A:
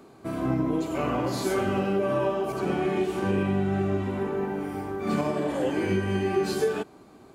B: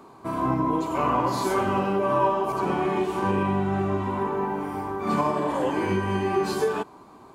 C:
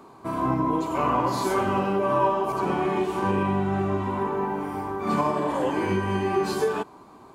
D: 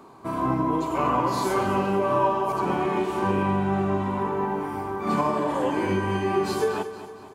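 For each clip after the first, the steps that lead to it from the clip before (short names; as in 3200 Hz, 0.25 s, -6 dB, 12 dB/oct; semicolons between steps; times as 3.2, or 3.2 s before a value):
bell 1000 Hz +14.5 dB 0.44 oct
nothing audible
feedback echo 0.231 s, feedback 47%, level -12.5 dB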